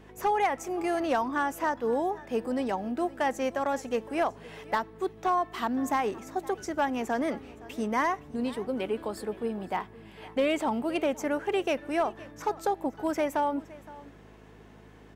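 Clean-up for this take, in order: clip repair -19 dBFS; de-hum 52.5 Hz, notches 5; inverse comb 0.516 s -20 dB

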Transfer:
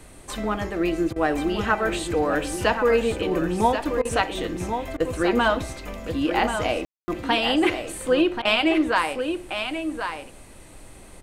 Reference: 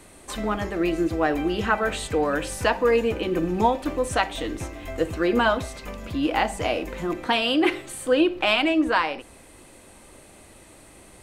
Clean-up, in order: room tone fill 6.85–7.08; interpolate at 1.13/4.02/4.97/8.42, 29 ms; noise print and reduce 6 dB; inverse comb 1.083 s -7.5 dB

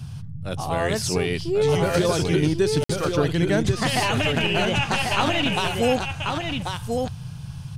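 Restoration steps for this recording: interpolate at 2.84, 54 ms; noise print and reduce 30 dB; inverse comb 1.091 s -4.5 dB

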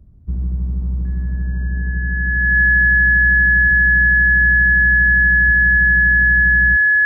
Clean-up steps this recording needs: notch 1700 Hz, Q 30

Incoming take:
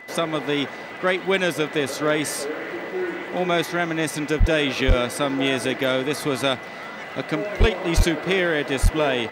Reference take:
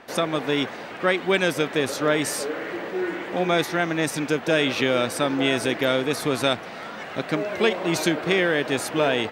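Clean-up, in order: clip repair -9.5 dBFS; de-click; notch 2000 Hz, Q 30; de-plosive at 4.39/4.87/7.59/7.96/8.82

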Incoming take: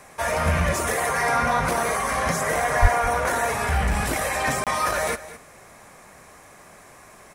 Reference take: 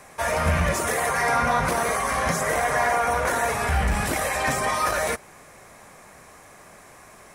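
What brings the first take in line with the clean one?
de-plosive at 2.81; interpolate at 4.64, 27 ms; inverse comb 0.212 s -15.5 dB

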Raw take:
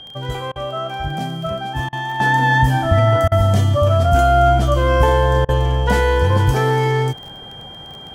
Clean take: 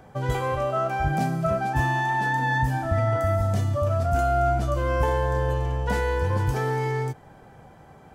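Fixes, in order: de-click; notch 3200 Hz, Q 30; interpolate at 0.52/1.89/3.28/5.45, 36 ms; gain correction -9 dB, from 2.2

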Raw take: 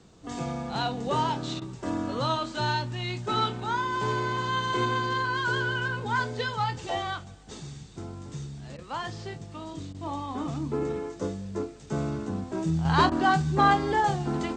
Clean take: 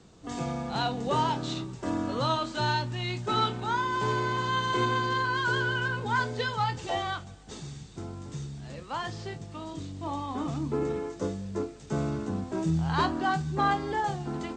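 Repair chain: interpolate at 1.6/8.77/9.93/13.1, 14 ms; gain 0 dB, from 12.85 s -5 dB

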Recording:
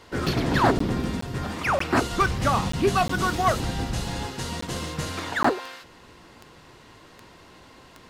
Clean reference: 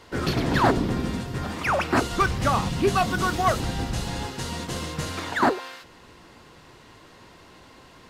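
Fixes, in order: de-click; interpolate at 0.79/1.21/1.79/2.72/3.08/4.61/5.43, 14 ms

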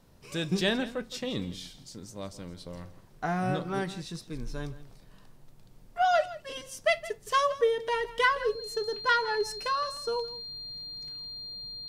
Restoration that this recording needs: notch 4200 Hz, Q 30; inverse comb 0.165 s -16.5 dB

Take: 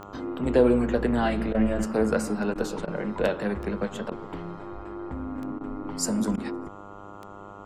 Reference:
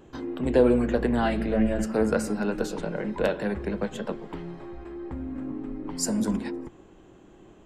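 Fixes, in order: de-click; de-hum 100.5 Hz, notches 14; interpolate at 1.53/2.54/2.86/4.1/5.59/6.36, 14 ms

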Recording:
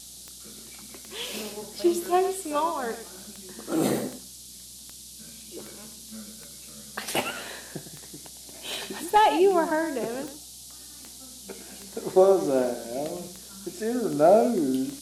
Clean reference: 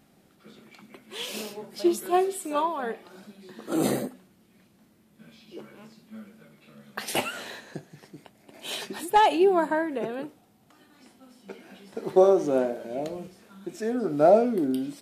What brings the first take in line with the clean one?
de-click; de-hum 61.7 Hz, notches 5; noise print and reduce 15 dB; inverse comb 0.107 s -11.5 dB

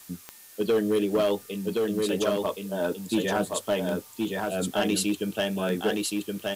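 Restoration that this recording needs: de-click; noise print and reduce 23 dB; inverse comb 1.071 s -3 dB

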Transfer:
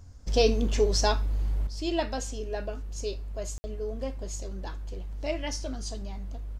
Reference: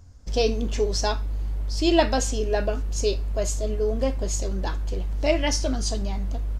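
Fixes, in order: room tone fill 3.58–3.64; gain 0 dB, from 1.67 s +9.5 dB

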